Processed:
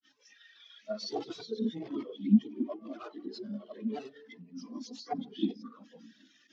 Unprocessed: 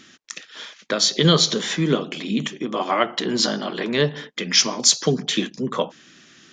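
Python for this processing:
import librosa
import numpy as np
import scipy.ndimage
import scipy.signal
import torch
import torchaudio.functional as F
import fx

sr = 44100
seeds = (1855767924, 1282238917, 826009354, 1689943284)

y = x + 0.5 * 10.0 ** (-17.0 / 20.0) * np.sign(x)
y = fx.granulator(y, sr, seeds[0], grain_ms=100.0, per_s=20.0, spray_ms=100.0, spread_st=0)
y = fx.hum_notches(y, sr, base_hz=60, count=8)
y = (np.mod(10.0 ** (11.5 / 20.0) * y + 1.0, 2.0) - 1.0) / 10.0 ** (11.5 / 20.0)
y = scipy.signal.sosfilt(scipy.signal.butter(2, 150.0, 'highpass', fs=sr, output='sos'), y)
y = fx.low_shelf(y, sr, hz=290.0, db=3.0)
y = fx.chorus_voices(y, sr, voices=6, hz=0.8, base_ms=16, depth_ms=2.4, mix_pct=70)
y = scipy.signal.sosfilt(scipy.signal.butter(4, 6500.0, 'lowpass', fs=sr, output='sos'), y)
y = fx.high_shelf(y, sr, hz=4300.0, db=7.5)
y = fx.spectral_expand(y, sr, expansion=2.5)
y = y * librosa.db_to_amplitude(-7.0)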